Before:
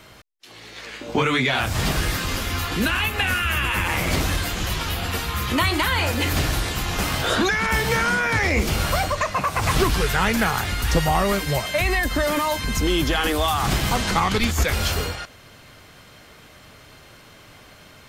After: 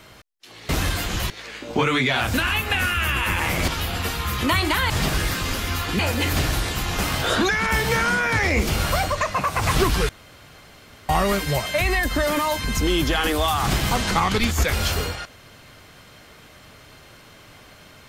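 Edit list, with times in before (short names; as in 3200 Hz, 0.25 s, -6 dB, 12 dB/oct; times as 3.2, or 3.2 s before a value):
1.73–2.82 move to 5.99
4.16–4.77 move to 0.69
10.09–11.09 room tone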